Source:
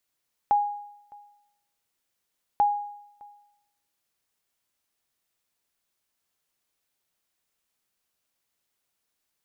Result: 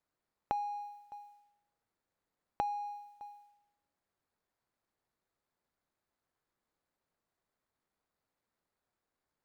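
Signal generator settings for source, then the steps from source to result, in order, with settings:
ping with an echo 823 Hz, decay 0.79 s, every 2.09 s, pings 2, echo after 0.61 s, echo −26.5 dB −15 dBFS
running median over 15 samples
downward compressor 16 to 1, threshold −32 dBFS

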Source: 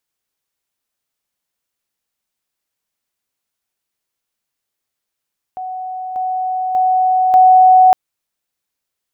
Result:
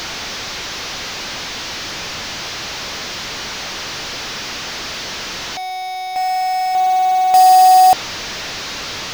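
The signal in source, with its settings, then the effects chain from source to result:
level staircase 744 Hz −22.5 dBFS, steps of 6 dB, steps 4, 0.59 s 0.00 s
linear delta modulator 32 kbit/s, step −19 dBFS
floating-point word with a short mantissa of 2 bits

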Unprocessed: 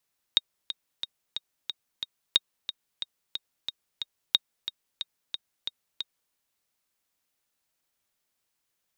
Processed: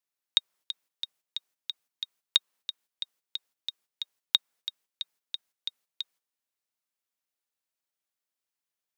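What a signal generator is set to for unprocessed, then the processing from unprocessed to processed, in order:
click track 181 BPM, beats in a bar 6, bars 3, 3,740 Hz, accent 12 dB −6 dBFS
noise gate −56 dBFS, range −10 dB
high-pass filter 230 Hz 6 dB per octave
dynamic equaliser 1,200 Hz, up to +4 dB, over −48 dBFS, Q 0.83

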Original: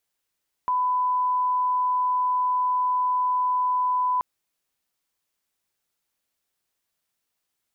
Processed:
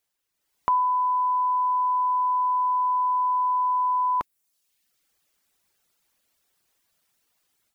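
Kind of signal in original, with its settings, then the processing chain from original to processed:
line-up tone −20 dBFS 3.53 s
reverb reduction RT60 0.88 s
dynamic equaliser 890 Hz, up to −7 dB, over −41 dBFS, Q 1.2
automatic gain control gain up to 10 dB

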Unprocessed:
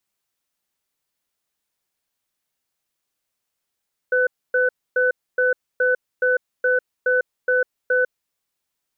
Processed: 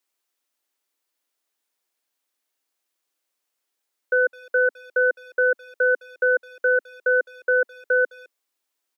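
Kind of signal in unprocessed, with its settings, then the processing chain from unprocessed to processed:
tone pair in a cadence 504 Hz, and 1,500 Hz, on 0.15 s, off 0.27 s, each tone −18 dBFS 3.99 s
Butterworth high-pass 250 Hz 48 dB per octave
far-end echo of a speakerphone 210 ms, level −21 dB

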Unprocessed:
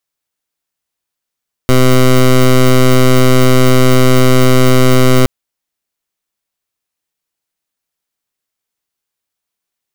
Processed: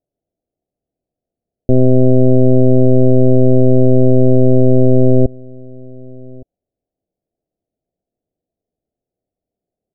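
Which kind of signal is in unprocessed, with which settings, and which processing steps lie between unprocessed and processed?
pulse wave 128 Hz, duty 15% −6.5 dBFS 3.57 s
mu-law and A-law mismatch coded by mu
elliptic low-pass filter 690 Hz, stop band 40 dB
slap from a distant wall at 200 metres, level −24 dB

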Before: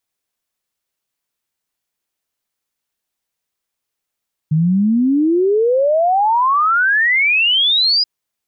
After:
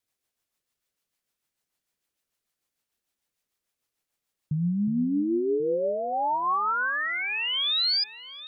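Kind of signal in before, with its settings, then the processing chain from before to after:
exponential sine sweep 150 Hz → 5,000 Hz 3.53 s −11 dBFS
brickwall limiter −21 dBFS
rotating-speaker cabinet horn 6.7 Hz, later 0.7 Hz, at 0:05.20
on a send: delay that swaps between a low-pass and a high-pass 362 ms, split 2,200 Hz, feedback 51%, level −10 dB

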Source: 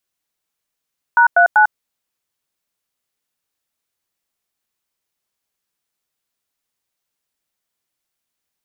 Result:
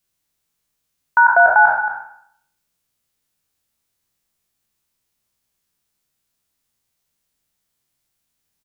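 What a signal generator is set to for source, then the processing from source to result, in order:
touch tones "#39", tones 98 ms, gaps 96 ms, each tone −10 dBFS
peak hold with a decay on every bin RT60 0.66 s
bass and treble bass +9 dB, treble +3 dB
on a send: single-tap delay 225 ms −11 dB

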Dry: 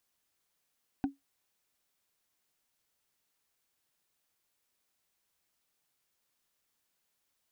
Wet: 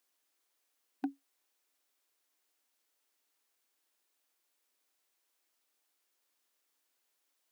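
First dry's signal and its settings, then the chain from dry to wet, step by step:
struck wood, lowest mode 277 Hz, decay 0.16 s, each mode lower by 8 dB, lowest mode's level −23 dB
linear-phase brick-wall high-pass 240 Hz

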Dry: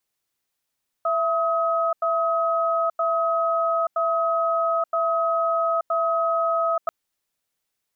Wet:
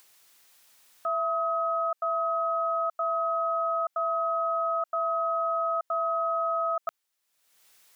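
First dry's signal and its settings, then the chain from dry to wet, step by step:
tone pair in a cadence 665 Hz, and 1,270 Hz, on 0.88 s, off 0.09 s, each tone −22 dBFS 5.84 s
low-shelf EQ 440 Hz −12 dB
upward compression, threshold −42 dBFS
brickwall limiter −21.5 dBFS

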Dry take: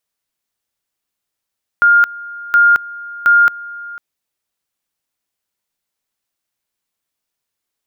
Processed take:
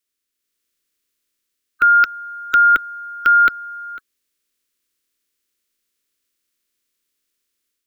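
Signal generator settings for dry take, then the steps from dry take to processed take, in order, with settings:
tone at two levels in turn 1,410 Hz −6 dBFS, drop 20.5 dB, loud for 0.22 s, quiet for 0.50 s, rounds 3
spectral magnitudes quantised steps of 30 dB
automatic gain control gain up to 5.5 dB
phaser with its sweep stopped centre 320 Hz, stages 4

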